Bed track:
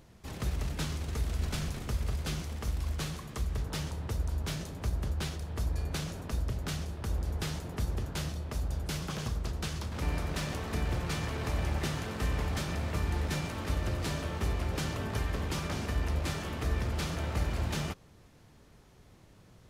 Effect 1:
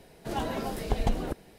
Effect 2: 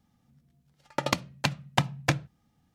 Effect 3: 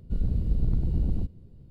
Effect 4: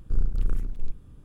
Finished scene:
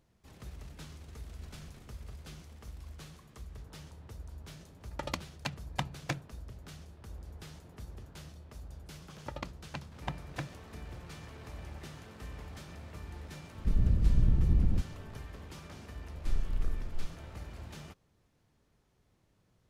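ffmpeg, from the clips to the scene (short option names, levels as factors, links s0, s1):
-filter_complex "[2:a]asplit=2[s0][s1];[0:a]volume=0.211[s2];[s1]lowpass=f=2200:p=1[s3];[3:a]lowshelf=f=390:g=6.5[s4];[s0]atrim=end=2.74,asetpts=PTS-STARTPTS,volume=0.316,afade=t=in:d=0.004:c=hsin,afade=t=out:st=2.736:d=0.004:c=hsin,adelay=176841S[s5];[s3]atrim=end=2.74,asetpts=PTS-STARTPTS,volume=0.224,afade=t=in:d=0.004:c=hsin,afade=t=out:st=2.736:d=0.004:c=hsin,adelay=8300[s6];[s4]atrim=end=1.7,asetpts=PTS-STARTPTS,volume=0.473,afade=t=in:d=0.004:c=hsin,afade=t=out:st=1.696:d=0.004:c=hsin,adelay=13550[s7];[4:a]atrim=end=1.24,asetpts=PTS-STARTPTS,volume=0.422,afade=t=in:d=0.004:c=hsin,afade=t=out:st=1.236:d=0.004:c=hsin,adelay=16150[s8];[s2][s5][s6][s7][s8]amix=inputs=5:normalize=0"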